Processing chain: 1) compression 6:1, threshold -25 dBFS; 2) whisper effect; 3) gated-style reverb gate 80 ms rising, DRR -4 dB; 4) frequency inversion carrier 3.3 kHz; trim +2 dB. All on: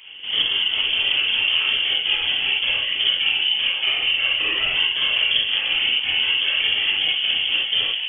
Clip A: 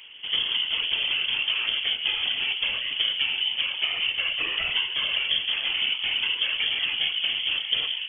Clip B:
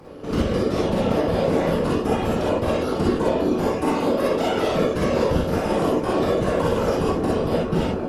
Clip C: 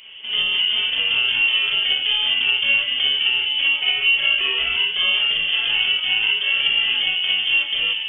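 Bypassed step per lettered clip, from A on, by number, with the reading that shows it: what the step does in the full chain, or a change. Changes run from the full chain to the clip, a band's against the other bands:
3, crest factor change +2.0 dB; 4, 2 kHz band -35.5 dB; 2, loudness change +1.0 LU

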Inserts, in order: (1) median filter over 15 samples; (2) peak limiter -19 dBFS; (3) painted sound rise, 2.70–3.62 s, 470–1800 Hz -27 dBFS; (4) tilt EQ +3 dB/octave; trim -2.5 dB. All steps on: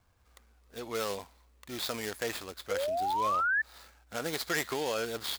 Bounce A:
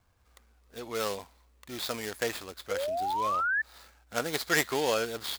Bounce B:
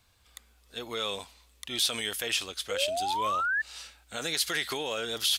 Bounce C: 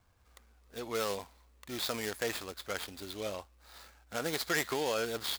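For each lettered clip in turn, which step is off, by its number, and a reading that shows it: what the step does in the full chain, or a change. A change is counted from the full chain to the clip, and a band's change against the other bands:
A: 2, crest factor change +4.5 dB; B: 1, 4 kHz band +10.5 dB; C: 3, 1 kHz band -8.5 dB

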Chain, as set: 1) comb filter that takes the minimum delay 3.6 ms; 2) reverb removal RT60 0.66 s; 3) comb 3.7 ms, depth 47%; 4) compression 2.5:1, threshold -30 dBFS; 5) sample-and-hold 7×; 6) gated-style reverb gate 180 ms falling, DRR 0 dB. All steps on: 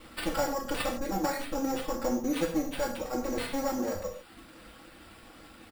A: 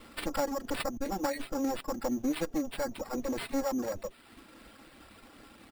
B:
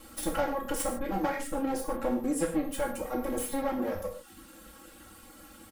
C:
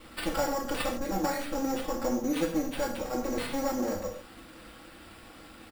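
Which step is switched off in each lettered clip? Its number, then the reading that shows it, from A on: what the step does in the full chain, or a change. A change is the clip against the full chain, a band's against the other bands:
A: 6, 250 Hz band +2.0 dB; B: 5, distortion -8 dB; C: 2, momentary loudness spread change -1 LU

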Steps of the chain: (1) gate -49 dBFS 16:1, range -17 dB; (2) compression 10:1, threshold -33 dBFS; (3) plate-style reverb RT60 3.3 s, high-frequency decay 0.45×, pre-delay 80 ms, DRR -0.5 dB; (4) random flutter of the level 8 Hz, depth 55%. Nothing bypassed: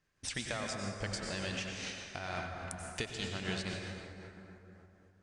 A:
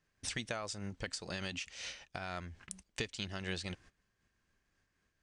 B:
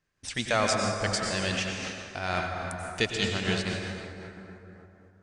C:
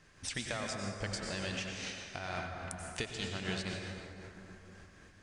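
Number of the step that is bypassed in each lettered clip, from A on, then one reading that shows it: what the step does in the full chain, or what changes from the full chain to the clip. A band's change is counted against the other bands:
3, momentary loudness spread change -8 LU; 2, mean gain reduction 7.0 dB; 1, momentary loudness spread change +2 LU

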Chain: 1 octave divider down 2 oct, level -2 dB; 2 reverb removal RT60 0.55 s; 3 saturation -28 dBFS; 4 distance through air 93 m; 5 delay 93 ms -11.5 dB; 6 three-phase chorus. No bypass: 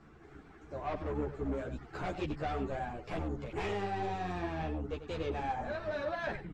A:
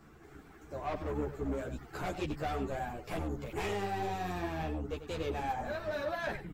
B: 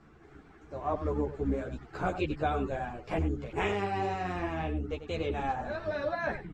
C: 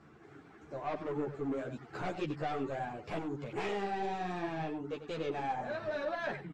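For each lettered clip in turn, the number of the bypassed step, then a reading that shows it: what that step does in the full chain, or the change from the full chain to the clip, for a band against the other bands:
4, 8 kHz band +7.5 dB; 3, distortion -9 dB; 1, 125 Hz band -4.0 dB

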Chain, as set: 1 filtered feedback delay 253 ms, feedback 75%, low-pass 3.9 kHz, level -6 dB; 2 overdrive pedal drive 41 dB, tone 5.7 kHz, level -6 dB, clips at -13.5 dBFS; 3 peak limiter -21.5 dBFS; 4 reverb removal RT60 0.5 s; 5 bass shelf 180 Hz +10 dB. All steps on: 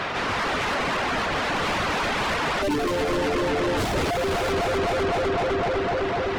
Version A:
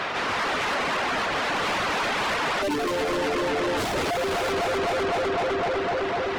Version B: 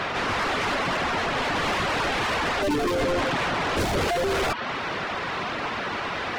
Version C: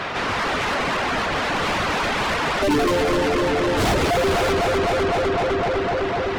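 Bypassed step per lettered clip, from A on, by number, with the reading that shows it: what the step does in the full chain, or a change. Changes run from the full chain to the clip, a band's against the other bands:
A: 5, 125 Hz band -6.5 dB; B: 1, momentary loudness spread change +4 LU; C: 3, mean gain reduction 3.0 dB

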